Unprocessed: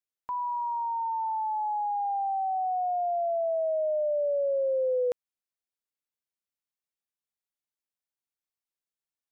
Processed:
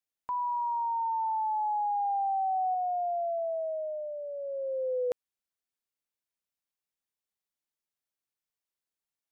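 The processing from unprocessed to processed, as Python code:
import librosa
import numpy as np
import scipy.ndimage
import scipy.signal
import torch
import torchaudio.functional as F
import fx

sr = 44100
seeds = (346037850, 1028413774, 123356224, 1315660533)

y = fx.peak_eq(x, sr, hz=580.0, db=-11.0, octaves=0.28, at=(2.74, 5.11))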